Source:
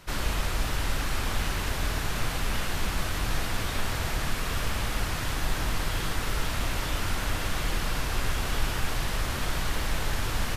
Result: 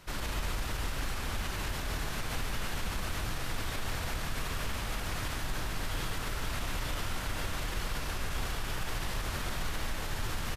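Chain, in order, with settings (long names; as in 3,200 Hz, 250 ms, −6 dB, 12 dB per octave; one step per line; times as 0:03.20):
brickwall limiter −22.5 dBFS, peak gain reduction 8.5 dB
on a send: single-tap delay 142 ms −6.5 dB
on the sum: level −3.5 dB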